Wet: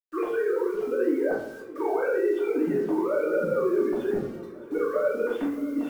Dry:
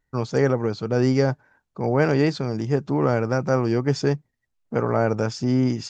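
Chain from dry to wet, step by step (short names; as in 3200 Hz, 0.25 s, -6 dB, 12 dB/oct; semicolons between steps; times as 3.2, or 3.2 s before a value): sine-wave speech; treble ducked by the level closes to 1700 Hz, closed at -20.5 dBFS; de-hum 230.1 Hz, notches 2; limiter -19.5 dBFS, peak gain reduction 11 dB; compressor 12:1, threshold -31 dBFS, peak gain reduction 9.5 dB; low-pass opened by the level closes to 2500 Hz; bit-crush 10-bit; swung echo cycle 0.825 s, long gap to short 3:1, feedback 54%, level -19 dB; shoebox room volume 110 m³, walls mixed, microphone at 1.8 m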